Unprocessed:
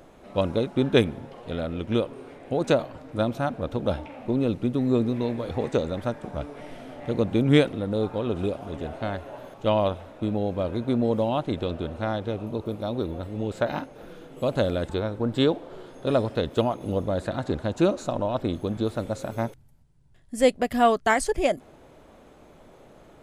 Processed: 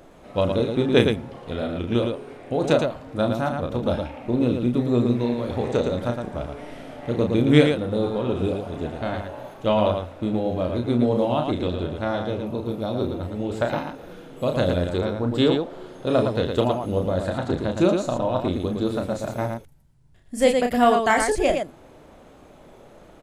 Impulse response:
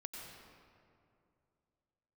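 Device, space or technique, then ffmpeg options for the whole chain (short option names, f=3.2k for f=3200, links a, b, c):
slapback doubling: -filter_complex "[0:a]asplit=3[a][b][c];[b]adelay=33,volume=-5.5dB[d];[c]adelay=113,volume=-5dB[e];[a][d][e]amix=inputs=3:normalize=0,volume=1dB"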